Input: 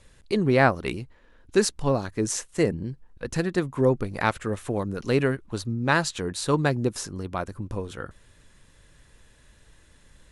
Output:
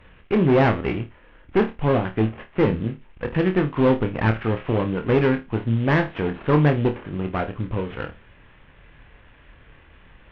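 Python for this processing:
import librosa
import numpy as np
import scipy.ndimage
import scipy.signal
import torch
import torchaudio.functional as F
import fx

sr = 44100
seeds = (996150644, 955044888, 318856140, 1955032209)

y = fx.cvsd(x, sr, bps=16000)
y = fx.tube_stage(y, sr, drive_db=20.0, bias=0.55)
y = fx.room_flutter(y, sr, wall_m=4.6, rt60_s=0.23)
y = y * librosa.db_to_amplitude(8.0)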